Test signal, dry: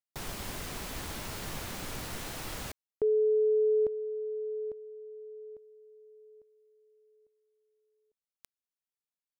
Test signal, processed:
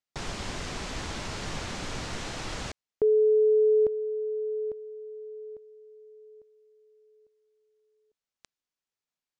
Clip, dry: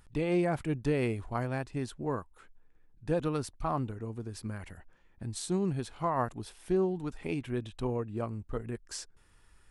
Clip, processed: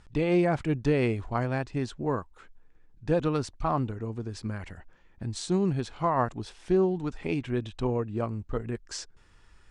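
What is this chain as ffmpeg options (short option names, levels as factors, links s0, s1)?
-af "lowpass=f=7400:w=0.5412,lowpass=f=7400:w=1.3066,volume=1.68"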